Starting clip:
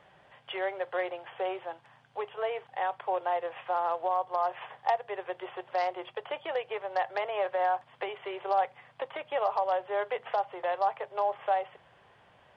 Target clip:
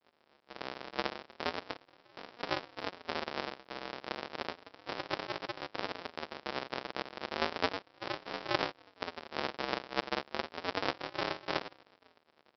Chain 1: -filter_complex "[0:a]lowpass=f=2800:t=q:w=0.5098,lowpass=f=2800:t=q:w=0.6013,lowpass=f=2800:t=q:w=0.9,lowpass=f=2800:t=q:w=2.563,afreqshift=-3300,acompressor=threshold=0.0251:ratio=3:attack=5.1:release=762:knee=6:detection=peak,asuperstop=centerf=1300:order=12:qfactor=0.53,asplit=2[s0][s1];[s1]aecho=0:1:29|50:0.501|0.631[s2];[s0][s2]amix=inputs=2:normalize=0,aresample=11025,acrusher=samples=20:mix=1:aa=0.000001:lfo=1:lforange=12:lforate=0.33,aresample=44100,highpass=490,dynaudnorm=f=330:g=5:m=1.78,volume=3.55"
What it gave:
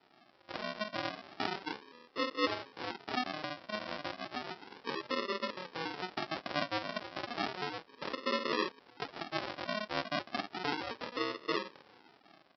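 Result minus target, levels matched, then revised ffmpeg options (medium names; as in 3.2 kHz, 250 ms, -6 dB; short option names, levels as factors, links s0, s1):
compression: peak gain reduction +9.5 dB; decimation with a swept rate: distortion -9 dB
-filter_complex "[0:a]lowpass=f=2800:t=q:w=0.5098,lowpass=f=2800:t=q:w=0.6013,lowpass=f=2800:t=q:w=0.9,lowpass=f=2800:t=q:w=2.563,afreqshift=-3300,asuperstop=centerf=1300:order=12:qfactor=0.53,asplit=2[s0][s1];[s1]aecho=0:1:29|50:0.501|0.631[s2];[s0][s2]amix=inputs=2:normalize=0,aresample=11025,acrusher=samples=65:mix=1:aa=0.000001:lfo=1:lforange=39:lforate=0.33,aresample=44100,highpass=490,dynaudnorm=f=330:g=5:m=1.78,volume=3.55"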